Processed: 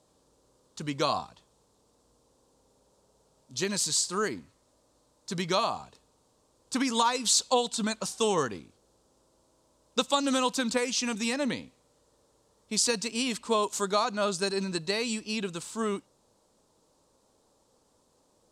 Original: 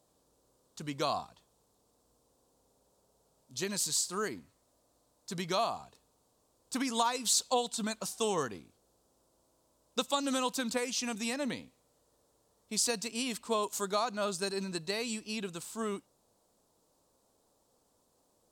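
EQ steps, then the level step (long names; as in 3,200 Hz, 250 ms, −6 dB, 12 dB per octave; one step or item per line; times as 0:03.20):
low-pass filter 8,700 Hz 12 dB per octave
notch filter 700 Hz, Q 12
+5.5 dB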